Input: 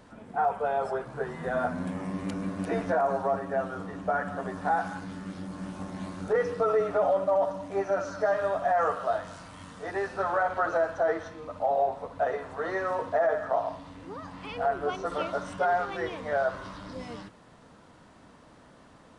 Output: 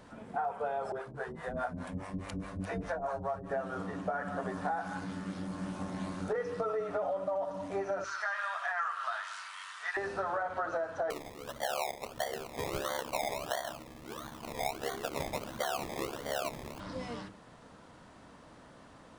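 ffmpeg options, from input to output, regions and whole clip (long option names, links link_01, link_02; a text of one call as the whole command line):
ffmpeg -i in.wav -filter_complex "[0:a]asettb=1/sr,asplit=3[link_01][link_02][link_03];[link_01]atrim=end=0.924[link_04];[link_02]atrim=start=0.92:end=3.51,asetpts=PTS-STARTPTS,afade=type=in:duration=0.004:curve=qsin,afade=type=out:start_time=2.586:duration=0.004:curve=qsin,asubboost=boost=9.5:cutoff=93,acrossover=split=480[link_05][link_06];[link_05]aeval=exprs='val(0)*(1-1/2+1/2*cos(2*PI*4.8*n/s))':channel_layout=same[link_07];[link_06]aeval=exprs='val(0)*(1-1/2-1/2*cos(2*PI*4.8*n/s))':channel_layout=same[link_08];[link_07][link_08]amix=inputs=2:normalize=0[link_09];[link_03]atrim=start=3.506[link_10];[link_04][link_09]acrossfade=duration=0.004:curve1=hsin:curve2=qsin[link_11];[link_11][link_10]acrossfade=duration=0.004:curve1=qsin:curve2=hsin,asettb=1/sr,asplit=3[link_12][link_13][link_14];[link_12]atrim=end=8.044[link_15];[link_13]atrim=start=8.04:end=9.97,asetpts=PTS-STARTPTS,afade=type=in:duration=0.004:curve=qsin,afade=type=out:start_time=1.926:duration=0.004:curve=qsin,highpass=frequency=1100:width=0.5412,highpass=frequency=1100:width=1.3066,equalizer=frequency=2100:width=0.44:gain=7[link_16];[link_14]atrim=start=9.966[link_17];[link_15][link_16]acrossfade=duration=0.004:curve1=hsin:curve2=qsin[link_18];[link_18][link_17]acrossfade=duration=0.004:curve1=qsin:curve2=hsin,asettb=1/sr,asplit=3[link_19][link_20][link_21];[link_19]atrim=end=11.104[link_22];[link_20]atrim=start=11.1:end=16.8,asetpts=PTS-STARTPTS,afade=type=in:duration=0.004:curve=qsin,afade=type=out:start_time=5.696:duration=0.004:curve=qsin,acrusher=samples=24:mix=1:aa=0.000001:lfo=1:lforange=14.4:lforate=1.5,aeval=exprs='val(0)*sin(2*PI*35*n/s)':channel_layout=same[link_23];[link_21]atrim=start=16.796[link_24];[link_22][link_23]acrossfade=duration=0.004:curve1=hsin:curve2=qsin[link_25];[link_25][link_24]acrossfade=duration=0.004:curve1=qsin:curve2=hsin,bandreject=frequency=50:width_type=h:width=6,bandreject=frequency=100:width_type=h:width=6,bandreject=frequency=150:width_type=h:width=6,bandreject=frequency=200:width_type=h:width=6,bandreject=frequency=250:width_type=h:width=6,bandreject=frequency=300:width_type=h:width=6,bandreject=frequency=350:width_type=h:width=6,bandreject=frequency=400:width_type=h:width=6,bandreject=frequency=450:width_type=h:width=6,acompressor=threshold=-31dB:ratio=6" out.wav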